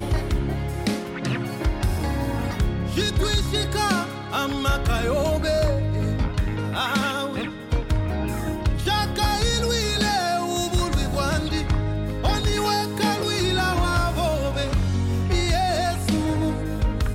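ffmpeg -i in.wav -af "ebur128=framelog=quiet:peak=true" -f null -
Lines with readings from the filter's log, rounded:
Integrated loudness:
  I:         -23.7 LUFS
  Threshold: -33.7 LUFS
Loudness range:
  LRA:         2.2 LU
  Threshold: -43.5 LUFS
  LRA low:   -24.9 LUFS
  LRA high:  -22.7 LUFS
True peak:
  Peak:      -12.0 dBFS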